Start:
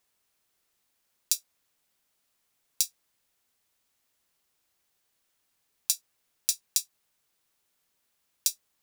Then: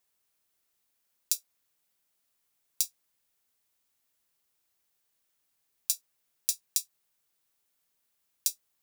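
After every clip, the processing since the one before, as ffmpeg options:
-af "highshelf=f=9.5k:g=6,volume=-5dB"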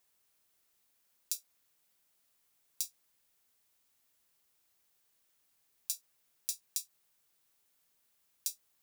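-af "alimiter=limit=-12.5dB:level=0:latency=1:release=145,volume=2.5dB"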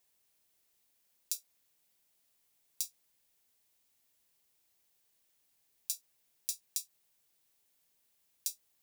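-af "equalizer=f=1.3k:t=o:w=0.73:g=-5"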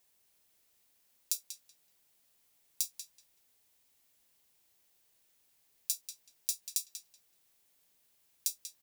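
-filter_complex "[0:a]asplit=2[a][b];[b]adelay=189,lowpass=f=4.2k:p=1,volume=-6dB,asplit=2[c][d];[d]adelay=189,lowpass=f=4.2k:p=1,volume=0.22,asplit=2[e][f];[f]adelay=189,lowpass=f=4.2k:p=1,volume=0.22[g];[a][c][e][g]amix=inputs=4:normalize=0,volume=3dB"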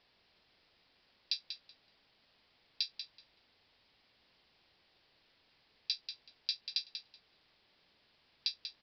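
-af "aresample=11025,aresample=44100,volume=9.5dB"

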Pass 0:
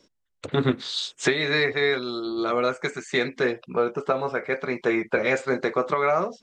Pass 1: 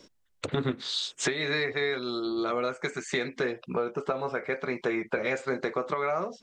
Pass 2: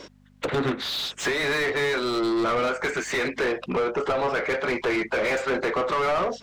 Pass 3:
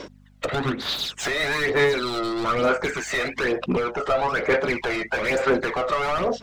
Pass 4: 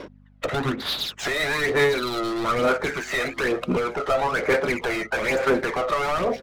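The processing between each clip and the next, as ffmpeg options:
-af "acompressor=threshold=-38dB:ratio=2.5,volume=6dB"
-filter_complex "[0:a]aeval=exprs='val(0)+0.00141*(sin(2*PI*50*n/s)+sin(2*PI*2*50*n/s)/2+sin(2*PI*3*50*n/s)/3+sin(2*PI*4*50*n/s)/4+sin(2*PI*5*50*n/s)/5)':c=same,asplit=2[a][b];[b]highpass=f=720:p=1,volume=28dB,asoftclip=type=tanh:threshold=-13dB[c];[a][c]amix=inputs=2:normalize=0,lowpass=f=1.9k:p=1,volume=-6dB,volume=-2.5dB"
-af "aphaser=in_gain=1:out_gain=1:delay=1.6:decay=0.54:speed=1.1:type=sinusoidal"
-af "adynamicsmooth=sensitivity=8:basefreq=2.3k,aecho=1:1:1051:0.1"

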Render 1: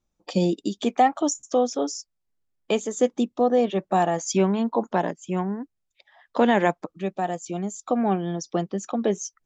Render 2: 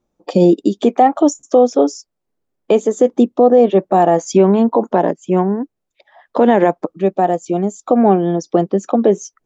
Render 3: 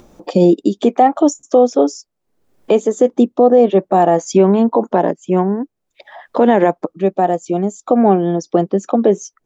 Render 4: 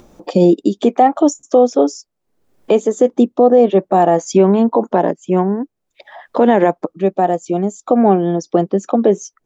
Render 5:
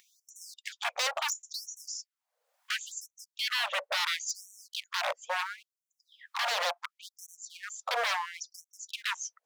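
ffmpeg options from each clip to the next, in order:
-af "equalizer=f=430:w=0.39:g=14,alimiter=level_in=1.5dB:limit=-1dB:release=50:level=0:latency=1,volume=-1dB"
-af "acompressor=mode=upward:threshold=-26dB:ratio=2.5"
-af anull
-af "aeval=exprs='0.126*(abs(mod(val(0)/0.126+3,4)-2)-1)':c=same,afftfilt=real='re*gte(b*sr/1024,440*pow(5700/440,0.5+0.5*sin(2*PI*0.72*pts/sr)))':imag='im*gte(b*sr/1024,440*pow(5700/440,0.5+0.5*sin(2*PI*0.72*pts/sr)))':win_size=1024:overlap=0.75,volume=-5.5dB"

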